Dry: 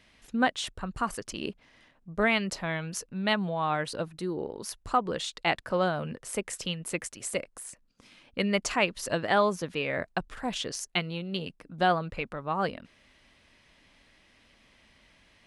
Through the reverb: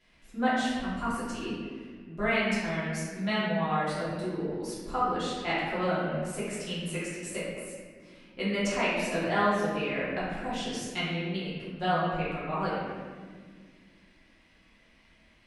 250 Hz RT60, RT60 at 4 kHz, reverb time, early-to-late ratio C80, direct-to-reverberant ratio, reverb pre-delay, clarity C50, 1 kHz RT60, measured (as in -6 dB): 3.1 s, 1.2 s, 1.8 s, 1.0 dB, -11.0 dB, 3 ms, -2.0 dB, 1.5 s